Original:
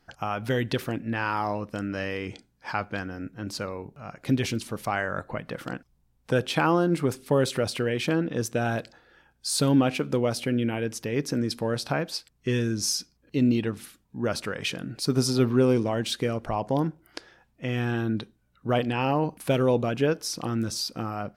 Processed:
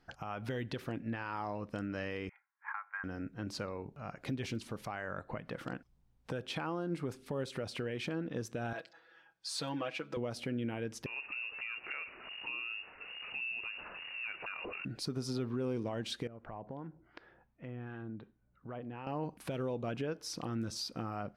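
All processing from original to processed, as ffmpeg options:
ffmpeg -i in.wav -filter_complex "[0:a]asettb=1/sr,asplit=3[link_01][link_02][link_03];[link_01]atrim=end=2.294[link_04];[link_02]atrim=start=2.29:end=3.04,asetpts=PTS-STARTPTS,afade=type=in:duration=0.004:curve=qsin,afade=type=out:start_time=0.746:duration=0.004:curve=qsin,asuperpass=centerf=1400:order=8:qfactor=1.2,aecho=1:1:3.7:0.36,atrim=end_sample=33075[link_05];[link_03]atrim=start=3.036[link_06];[link_04][link_05]acrossfade=duration=0.004:curve1=hsin:curve2=qsin[link_07];[link_07][link_06]acrossfade=duration=0.004:curve1=qsin:curve2=hsin,asettb=1/sr,asplit=3[link_08][link_09][link_10];[link_08]atrim=end=8.734[link_11];[link_09]atrim=start=8.73:end=10.17,asetpts=PTS-STARTPTS,afade=type=in:duration=0.004:curve=qsin,afade=type=out:start_time=1.436:duration=0.004:curve=qsin,highpass=frequency=1000:poles=1,equalizer=frequency=13000:width=0.34:gain=-9,aecho=1:1:6.1:0.88,atrim=end_sample=63504[link_12];[link_10]atrim=start=10.166[link_13];[link_11][link_12]acrossfade=duration=0.004:curve1=hsin:curve2=qsin[link_14];[link_14][link_13]acrossfade=duration=0.004:curve1=qsin:curve2=hsin,asettb=1/sr,asplit=3[link_15][link_16][link_17];[link_15]atrim=end=11.064[link_18];[link_16]atrim=start=11.06:end=14.85,asetpts=PTS-STARTPTS,afade=type=in:duration=0.004:curve=qsin,afade=type=out:start_time=3.786:duration=0.004:curve=qsin,aeval=exprs='val(0)+0.5*0.0211*sgn(val(0))':channel_layout=same,lowpass=frequency=2500:width_type=q:width=0.5098,lowpass=frequency=2500:width_type=q:width=0.6013,lowpass=frequency=2500:width_type=q:width=0.9,lowpass=frequency=2500:width_type=q:width=2.563,afreqshift=-2900,acompressor=threshold=-39dB:ratio=2:attack=3.2:release=140:knee=1:detection=peak[link_19];[link_17]atrim=start=14.846[link_20];[link_18][link_19]acrossfade=duration=0.004:curve1=hsin:curve2=qsin[link_21];[link_21][link_20]acrossfade=duration=0.004:curve1=qsin:curve2=hsin,asettb=1/sr,asplit=3[link_22][link_23][link_24];[link_22]atrim=end=16.274[link_25];[link_23]atrim=start=16.27:end=19.07,asetpts=PTS-STARTPTS,afade=type=in:duration=0.004:curve=qsin,afade=type=out:start_time=2.796:duration=0.004:curve=qsin,acrossover=split=860[link_26][link_27];[link_26]aeval=exprs='val(0)*(1-0.5/2+0.5/2*cos(2*PI*2.7*n/s))':channel_layout=same[link_28];[link_27]aeval=exprs='val(0)*(1-0.5/2-0.5/2*cos(2*PI*2.7*n/s))':channel_layout=same[link_29];[link_28][link_29]amix=inputs=2:normalize=0,lowpass=2000,acompressor=threshold=-43dB:ratio=2.5:attack=3.2:release=140:knee=1:detection=peak[link_30];[link_24]atrim=start=19.066[link_31];[link_25][link_30]acrossfade=duration=0.004:curve1=hsin:curve2=qsin[link_32];[link_32][link_31]acrossfade=duration=0.004:curve1=qsin:curve2=hsin,highshelf=frequency=7200:gain=-11,acompressor=threshold=-35dB:ratio=2,alimiter=level_in=0.5dB:limit=-24dB:level=0:latency=1:release=129,volume=-0.5dB,volume=-3dB" out.wav

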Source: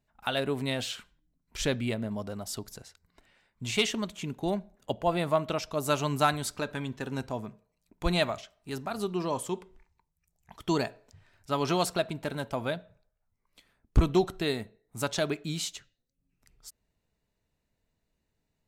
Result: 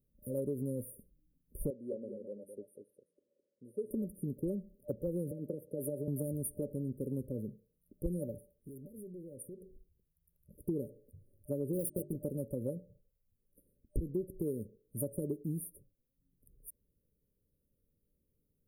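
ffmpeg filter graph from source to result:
ffmpeg -i in.wav -filter_complex "[0:a]asettb=1/sr,asplit=3[link_01][link_02][link_03];[link_01]atrim=end=1.704[link_04];[link_02]atrim=start=1.7:end=3.91,asetpts=PTS-STARTPTS,afade=type=in:duration=0.004:curve=qsin,afade=type=out:start_time=2.206:duration=0.004:curve=qsin,highpass=500,lowpass=3300,aecho=1:1:212:0.422,atrim=end_sample=97461[link_05];[link_03]atrim=start=3.906[link_06];[link_04][link_05]acrossfade=duration=0.004:curve1=hsin:curve2=qsin[link_07];[link_07][link_06]acrossfade=duration=0.004:curve1=qsin:curve2=hsin,asettb=1/sr,asplit=3[link_08][link_09][link_10];[link_08]atrim=end=5.314[link_11];[link_09]atrim=start=5.31:end=6.08,asetpts=PTS-STARTPTS,afade=type=in:duration=0.004:curve=qsin,afade=type=out:start_time=0.766:duration=0.004:curve=qsin,asplit=2[link_12][link_13];[link_13]highpass=frequency=720:poles=1,volume=12dB,asoftclip=type=tanh:threshold=-13.5dB[link_14];[link_12][link_14]amix=inputs=2:normalize=0,lowpass=frequency=2100:poles=1,volume=-6dB,highpass=frequency=110:width=0.5412,highpass=frequency=110:width=1.3066,acompressor=threshold=-28dB:ratio=5:attack=3.2:release=140:knee=1:detection=peak[link_15];[link_10]atrim=start=6.076[link_16];[link_11][link_15]acrossfade=duration=0.004:curve1=hsin:curve2=qsin[link_17];[link_17][link_16]acrossfade=duration=0.004:curve1=qsin:curve2=hsin,asettb=1/sr,asplit=3[link_18][link_19][link_20];[link_18]atrim=end=8.564[link_21];[link_19]atrim=start=8.56:end=10.64,asetpts=PTS-STARTPTS,afade=type=in:duration=0.004:curve=qsin,afade=type=out:start_time=2.076:duration=0.004:curve=qsin,volume=29dB,asoftclip=hard,volume=-29dB,acompressor=threshold=-44dB:ratio=16:attack=3.2:release=140:knee=1:detection=peak[link_22];[link_20]atrim=start=10.636[link_23];[link_21][link_22]acrossfade=duration=0.004:curve1=hsin:curve2=qsin[link_24];[link_24][link_23]acrossfade=duration=0.004:curve1=qsin:curve2=hsin,asettb=1/sr,asplit=3[link_25][link_26][link_27];[link_25]atrim=end=11.734[link_28];[link_26]atrim=start=11.73:end=12.16,asetpts=PTS-STARTPTS,afade=type=in:duration=0.004:curve=qsin,afade=type=out:start_time=0.426:duration=0.004:curve=qsin,aeval=exprs='val(0)+0.5*0.015*sgn(val(0))':channel_layout=same,acrusher=bits=4:mix=0:aa=0.5,bandreject=frequency=50:width_type=h:width=6,bandreject=frequency=100:width_type=h:width=6,bandreject=frequency=150:width_type=h:width=6,bandreject=frequency=200:width_type=h:width=6,bandreject=frequency=250:width_type=h:width=6,bandreject=frequency=300:width_type=h:width=6,bandreject=frequency=350:width_type=h:width=6,bandreject=frequency=400:width_type=h:width=6[link_29];[link_27]atrim=start=12.156[link_30];[link_28][link_29]acrossfade=duration=0.004:curve1=hsin:curve2=qsin[link_31];[link_31][link_30]acrossfade=duration=0.004:curve1=qsin:curve2=hsin,afftfilt=real='re*(1-between(b*sr/4096,600,9000))':imag='im*(1-between(b*sr/4096,600,9000))':win_size=4096:overlap=0.75,highshelf=frequency=12000:gain=9.5,acompressor=threshold=-32dB:ratio=6" out.wav

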